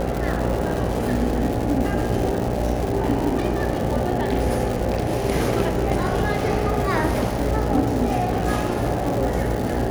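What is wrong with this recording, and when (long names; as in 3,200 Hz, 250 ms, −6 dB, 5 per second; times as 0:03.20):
mains buzz 60 Hz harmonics 14 −27 dBFS
surface crackle 290 per second −25 dBFS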